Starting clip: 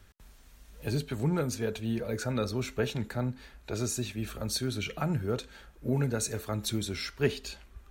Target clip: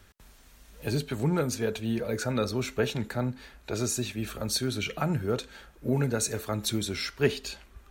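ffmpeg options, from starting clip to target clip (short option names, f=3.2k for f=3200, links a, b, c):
-af "lowshelf=f=120:g=-5.5,volume=3.5dB"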